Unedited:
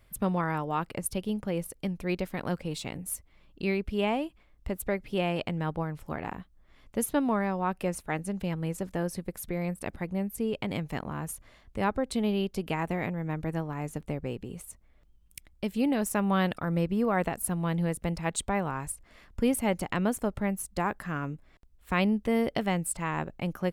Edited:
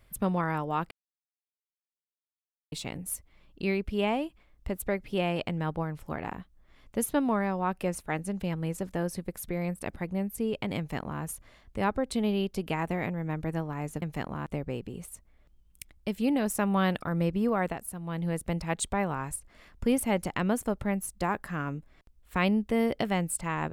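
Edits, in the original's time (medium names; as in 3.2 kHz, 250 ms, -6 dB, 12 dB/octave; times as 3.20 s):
0.91–2.72 s: mute
10.78–11.22 s: copy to 14.02 s
17.05–17.99 s: dip -9 dB, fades 0.45 s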